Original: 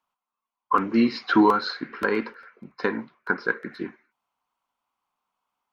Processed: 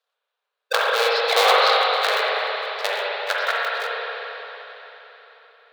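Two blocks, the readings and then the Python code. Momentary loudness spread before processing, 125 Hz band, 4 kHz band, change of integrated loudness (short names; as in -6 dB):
16 LU, under -40 dB, +15.5 dB, +4.0 dB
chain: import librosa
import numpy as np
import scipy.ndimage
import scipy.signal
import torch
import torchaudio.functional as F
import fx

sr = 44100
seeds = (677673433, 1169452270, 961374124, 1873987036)

y = fx.cycle_switch(x, sr, every=2, mode='inverted')
y = fx.brickwall_highpass(y, sr, low_hz=410.0)
y = fx.peak_eq(y, sr, hz=3900.0, db=12.5, octaves=0.74)
y = fx.rev_spring(y, sr, rt60_s=3.9, pass_ms=(43, 58), chirp_ms=50, drr_db=-6.5)
y = y * librosa.db_to_amplitude(-3.0)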